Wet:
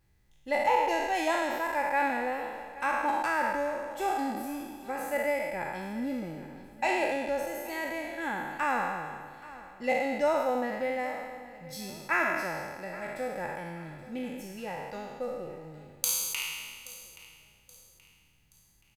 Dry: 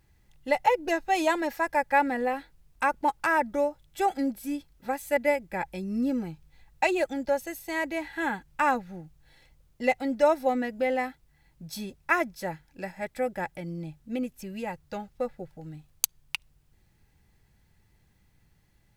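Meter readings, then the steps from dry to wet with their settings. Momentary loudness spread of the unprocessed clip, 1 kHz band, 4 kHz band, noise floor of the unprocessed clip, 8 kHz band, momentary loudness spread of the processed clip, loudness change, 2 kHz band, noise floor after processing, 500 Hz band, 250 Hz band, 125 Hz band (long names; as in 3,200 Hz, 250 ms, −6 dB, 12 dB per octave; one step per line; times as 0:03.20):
14 LU, −2.0 dB, +0.5 dB, −65 dBFS, +2.5 dB, 15 LU, −2.5 dB, −1.0 dB, −64 dBFS, −3.0 dB, −5.0 dB, −4.0 dB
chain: peak hold with a decay on every bin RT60 1.59 s
repeating echo 826 ms, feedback 37%, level −18 dB
level −7 dB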